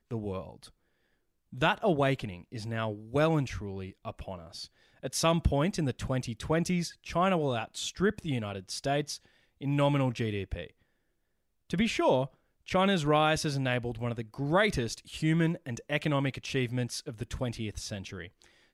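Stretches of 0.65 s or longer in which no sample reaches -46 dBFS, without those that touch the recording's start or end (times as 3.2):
0.68–1.53
10.69–11.7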